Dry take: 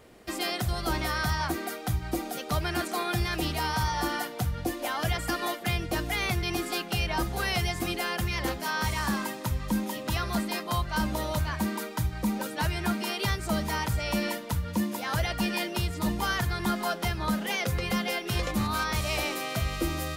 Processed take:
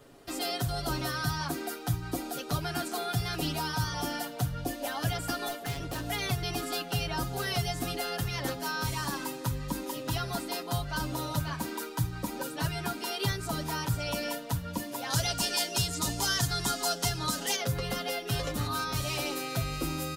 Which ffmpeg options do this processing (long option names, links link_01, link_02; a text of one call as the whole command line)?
ffmpeg -i in.wav -filter_complex "[0:a]asettb=1/sr,asplit=3[link_01][link_02][link_03];[link_01]atrim=end=5.484[link_04];[link_02]atrim=start=5.48:end=6.07,asetpts=PTS-STARTPTS,afade=type=in:duration=0.004:curve=qsin,afade=type=out:start_time=0.586:duration=0.004:curve=qsin,volume=29.5dB,asoftclip=hard,volume=-29.5dB[link_05];[link_03]atrim=start=6.066[link_06];[link_04][link_05]acrossfade=duration=0.004:curve1=hsin:curve2=qsin[link_07];[link_07][link_06]acrossfade=duration=0.004:curve1=qsin:curve2=hsin,asettb=1/sr,asplit=3[link_08][link_09][link_10];[link_08]atrim=end=15.104[link_11];[link_09]atrim=start=15.1:end=17.56,asetpts=PTS-STARTPTS,afade=type=in:duration=0.004:curve=qsin,afade=type=out:start_time=2.456:duration=0.004:curve=qsin,equalizer=frequency=6900:width_type=o:width=1.6:gain=12.5[link_12];[link_10]atrim=start=17.556[link_13];[link_11][link_12]acrossfade=duration=0.004:curve1=hsin:curve2=qsin[link_14];[link_14][link_13]acrossfade=duration=0.004:curve1=qsin:curve2=hsin,equalizer=frequency=2200:width_type=o:width=0.43:gain=-6.5,aecho=1:1:7.2:0.82,acrossover=split=420|3000[link_15][link_16][link_17];[link_16]acompressor=threshold=-33dB:ratio=2[link_18];[link_15][link_18][link_17]amix=inputs=3:normalize=0,volume=-2.5dB" out.wav